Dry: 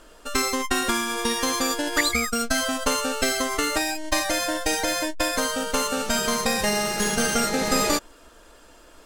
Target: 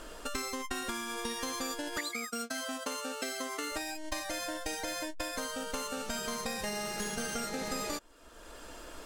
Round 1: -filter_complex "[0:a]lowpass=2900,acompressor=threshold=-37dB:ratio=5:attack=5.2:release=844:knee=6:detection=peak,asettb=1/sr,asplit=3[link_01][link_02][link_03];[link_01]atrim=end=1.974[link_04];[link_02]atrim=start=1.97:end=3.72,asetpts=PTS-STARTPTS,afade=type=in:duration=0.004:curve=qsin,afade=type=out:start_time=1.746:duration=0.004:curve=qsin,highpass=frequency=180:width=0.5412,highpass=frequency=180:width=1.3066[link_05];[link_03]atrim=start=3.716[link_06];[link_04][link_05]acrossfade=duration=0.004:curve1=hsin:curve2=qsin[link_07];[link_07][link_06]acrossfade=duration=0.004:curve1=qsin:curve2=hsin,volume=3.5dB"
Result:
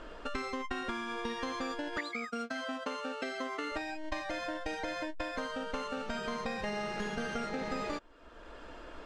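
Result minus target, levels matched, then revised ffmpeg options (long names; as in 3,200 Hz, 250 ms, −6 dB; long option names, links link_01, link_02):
4,000 Hz band −4.0 dB
-filter_complex "[0:a]acompressor=threshold=-37dB:ratio=5:attack=5.2:release=844:knee=6:detection=peak,asettb=1/sr,asplit=3[link_01][link_02][link_03];[link_01]atrim=end=1.974[link_04];[link_02]atrim=start=1.97:end=3.72,asetpts=PTS-STARTPTS,afade=type=in:duration=0.004:curve=qsin,afade=type=out:start_time=1.746:duration=0.004:curve=qsin,highpass=frequency=180:width=0.5412,highpass=frequency=180:width=1.3066[link_05];[link_03]atrim=start=3.716[link_06];[link_04][link_05]acrossfade=duration=0.004:curve1=hsin:curve2=qsin[link_07];[link_07][link_06]acrossfade=duration=0.004:curve1=qsin:curve2=hsin,volume=3.5dB"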